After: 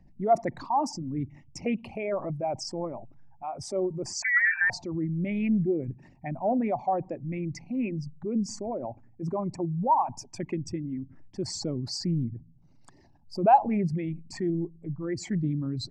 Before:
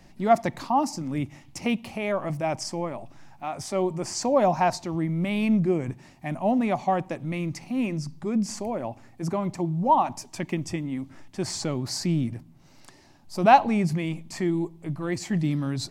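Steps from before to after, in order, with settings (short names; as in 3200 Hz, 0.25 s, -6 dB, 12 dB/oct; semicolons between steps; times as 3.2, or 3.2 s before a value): formant sharpening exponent 2; 4.22–4.7 inverted band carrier 2500 Hz; Doppler distortion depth 0.1 ms; gain -3 dB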